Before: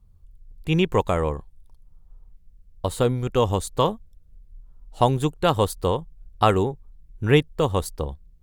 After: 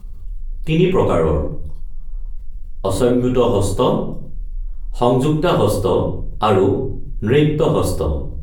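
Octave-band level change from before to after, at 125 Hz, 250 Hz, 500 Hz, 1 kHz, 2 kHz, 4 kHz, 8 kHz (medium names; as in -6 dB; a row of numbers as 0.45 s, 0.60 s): +5.5 dB, +8.5 dB, +7.5 dB, +3.0 dB, +1.5 dB, +2.0 dB, +4.0 dB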